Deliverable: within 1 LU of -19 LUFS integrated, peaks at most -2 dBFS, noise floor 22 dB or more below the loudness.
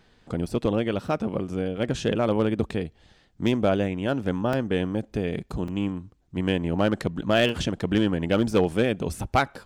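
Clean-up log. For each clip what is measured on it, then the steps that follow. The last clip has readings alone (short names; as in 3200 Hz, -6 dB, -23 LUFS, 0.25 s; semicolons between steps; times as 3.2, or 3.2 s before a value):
clipped 0.2%; flat tops at -12.5 dBFS; dropouts 5; longest dropout 3.4 ms; loudness -26.0 LUFS; peak -12.5 dBFS; loudness target -19.0 LUFS
-> clip repair -12.5 dBFS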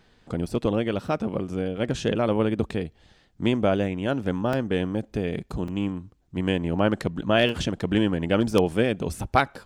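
clipped 0.0%; dropouts 5; longest dropout 3.4 ms
-> interpolate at 0.46/1.08/4.53/5.68/7.49, 3.4 ms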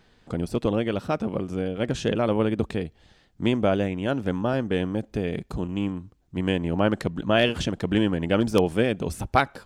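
dropouts 0; loudness -25.5 LUFS; peak -4.0 dBFS; loudness target -19.0 LUFS
-> gain +6.5 dB; limiter -2 dBFS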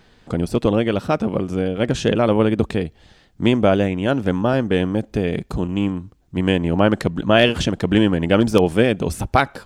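loudness -19.5 LUFS; peak -2.0 dBFS; noise floor -53 dBFS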